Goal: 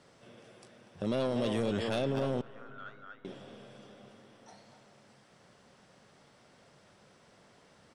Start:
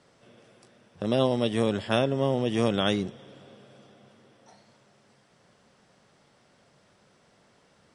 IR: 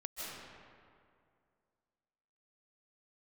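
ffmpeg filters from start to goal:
-filter_complex "[0:a]asplit=2[a][b];[b]adelay=240,highpass=300,lowpass=3.4k,asoftclip=type=hard:threshold=-18dB,volume=-9dB[c];[a][c]amix=inputs=2:normalize=0,asoftclip=type=tanh:threshold=-19dB,alimiter=level_in=0.5dB:limit=-24dB:level=0:latency=1:release=30,volume=-0.5dB,asettb=1/sr,asplit=3[d][e][f];[d]atrim=end=2.414[g];[e]atrim=start=2.41:end=3.25,asetpts=PTS-STARTPTS,afade=t=in:d=0.004:c=qsin,afade=t=out:st=0.836:d=0.004:c=qsin,bandpass=f=1.4k:t=q:w=8.9:csg=0[h];[f]atrim=start=3.246[i];[g][h]acrossfade=d=0.004:c1=hsin:c2=qsin[j];[j][i]acrossfade=d=0.004:c1=qsin:c2=hsin,asplit=2[k][l];[1:a]atrim=start_sample=2205,asetrate=34839,aresample=44100[m];[l][m]afir=irnorm=-1:irlink=0,volume=-21.5dB[n];[k][n]amix=inputs=2:normalize=0"

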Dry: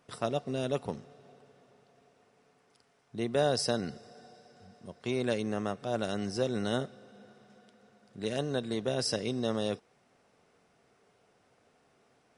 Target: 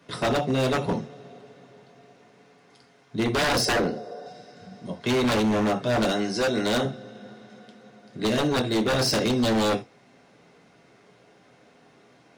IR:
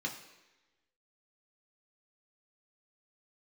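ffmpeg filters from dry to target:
-filter_complex "[0:a]asettb=1/sr,asplit=3[a][b][c];[a]atrim=end=3.654[d];[b]atrim=start=3.65:end=4.26,asetpts=PTS-STARTPTS,afade=t=in:d=0.004:c=qsin,afade=t=out:st=0.606:d=0.004:c=qsin,equalizer=f=125:t=o:w=1:g=-10,equalizer=f=250:t=o:w=1:g=-4,equalizer=f=500:t=o:w=1:g=9,equalizer=f=1k:t=o:w=1:g=3,equalizer=f=2k:t=o:w=1:g=-5,equalizer=f=4k:t=o:w=1:g=-4,equalizer=f=8k:t=o:w=1:g=-7[e];[c]atrim=start=4.256[f];[d][e]acrossfade=d=0.004:c1=hsin:c2=qsin[g];[g][f]acrossfade=d=0.004:c1=qsin:c2=hsin[h];[1:a]atrim=start_sample=2205,atrim=end_sample=3969[i];[h][i]afir=irnorm=-1:irlink=0,acrossover=split=130[j][k];[j]alimiter=level_in=20dB:limit=-24dB:level=0:latency=1,volume=-20dB[l];[l][k]amix=inputs=2:normalize=0,asettb=1/sr,asplit=3[m][n][o];[m]atrim=end=6.124[p];[n]atrim=start=6.12:end=6.85,asetpts=PTS-STARTPTS,afade=t=in:d=0.004:c=qsin,afade=t=out:st=0.726:d=0.004:c=qsin,lowshelf=f=260:g=-9[q];[o]atrim=start=6.846[r];[p][q]acrossfade=d=0.004:c1=hsin:c2=qsin[s];[s][r]acrossfade=d=0.004:c1=qsin:c2=hsin,aeval=exprs='0.0473*(abs(mod(val(0)/0.0473+3,4)-2)-1)':c=same,volume=9dB"

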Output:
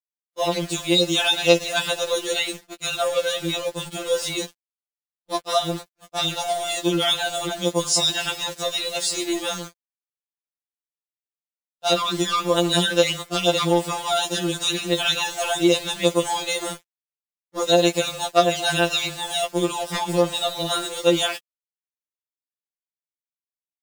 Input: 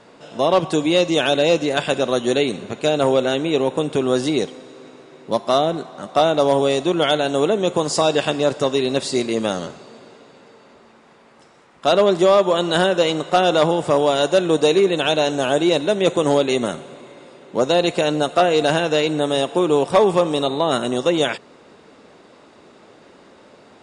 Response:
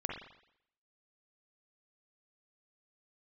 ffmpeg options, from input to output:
-filter_complex "[0:a]acrossover=split=4300[a][b];[b]acontrast=31[c];[a][c]amix=inputs=2:normalize=0,tiltshelf=f=1.4k:g=-4,aeval=exprs='val(0)*gte(abs(val(0)),0.0376)':c=same,agate=range=-33dB:threshold=-27dB:ratio=3:detection=peak,afftfilt=real='re*2.83*eq(mod(b,8),0)':imag='im*2.83*eq(mod(b,8),0)':win_size=2048:overlap=0.75,volume=-1dB"

